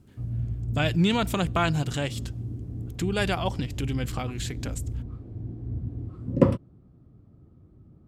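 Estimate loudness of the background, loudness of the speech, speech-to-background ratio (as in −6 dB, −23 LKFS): −32.5 LKFS, −28.0 LKFS, 4.5 dB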